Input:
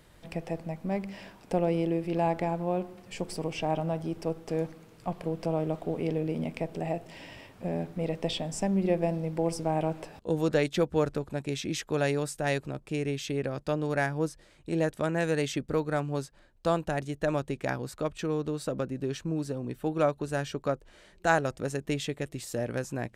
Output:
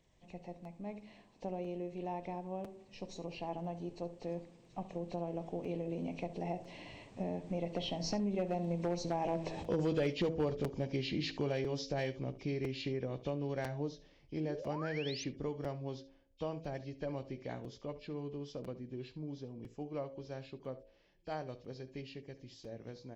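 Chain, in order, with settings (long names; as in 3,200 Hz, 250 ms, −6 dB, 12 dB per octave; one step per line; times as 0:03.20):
hearing-aid frequency compression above 2,300 Hz 1.5 to 1
source passing by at 0:09.84, 20 m/s, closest 14 metres
parametric band 1,400 Hz −13 dB 0.47 octaves
hum removal 54.33 Hz, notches 12
downward compressor 3 to 1, threshold −45 dBFS, peak gain reduction 17 dB
hard clipping −36.5 dBFS, distortion −22 dB
on a send: single-tap delay 70 ms −16 dB
on the sum: sound drawn into the spectrogram rise, 0:14.44–0:15.24, 260–6,500 Hz −56 dBFS
regular buffer underruns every 1.00 s, samples 256, repeat, from 0:00.64
level +10.5 dB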